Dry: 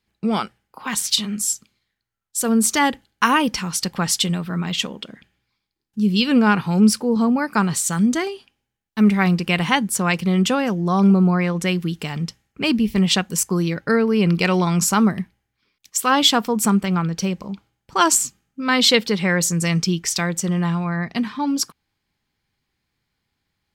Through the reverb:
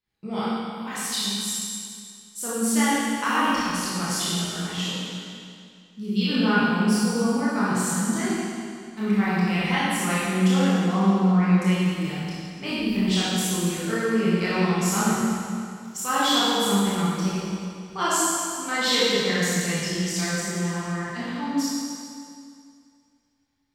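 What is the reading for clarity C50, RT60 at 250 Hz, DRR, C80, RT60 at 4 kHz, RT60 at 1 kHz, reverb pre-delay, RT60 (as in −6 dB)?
−5.0 dB, 2.3 s, −10.5 dB, −2.5 dB, 2.2 s, 2.3 s, 21 ms, 2.3 s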